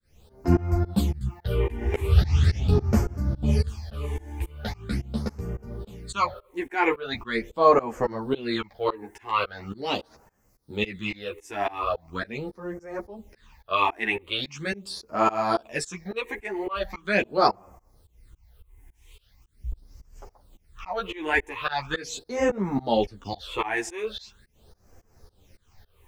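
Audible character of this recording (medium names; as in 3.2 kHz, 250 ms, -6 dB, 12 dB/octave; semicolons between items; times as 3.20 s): a quantiser's noise floor 12-bit, dither triangular; phasing stages 8, 0.41 Hz, lowest notch 160–3700 Hz; tremolo saw up 3.6 Hz, depth 100%; a shimmering, thickened sound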